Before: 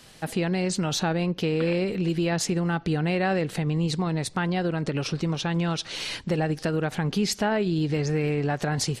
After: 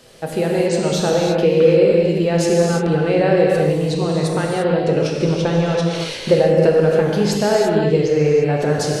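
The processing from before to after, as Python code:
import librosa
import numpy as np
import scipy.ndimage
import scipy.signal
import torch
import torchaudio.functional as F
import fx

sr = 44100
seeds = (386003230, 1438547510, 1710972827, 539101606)

y = fx.peak_eq(x, sr, hz=490.0, db=12.0, octaves=0.82)
y = fx.transient(y, sr, attack_db=5, sustain_db=-3, at=(5.18, 7.03))
y = fx.rev_gated(y, sr, seeds[0], gate_ms=370, shape='flat', drr_db=-2.0)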